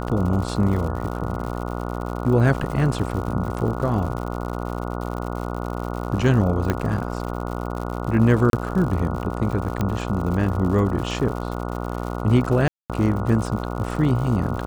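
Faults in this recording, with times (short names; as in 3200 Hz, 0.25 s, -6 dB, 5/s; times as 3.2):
buzz 60 Hz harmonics 24 -28 dBFS
crackle 120/s -30 dBFS
6.7 pop -9 dBFS
8.5–8.53 gap 32 ms
9.81 pop -11 dBFS
12.68–12.9 gap 0.217 s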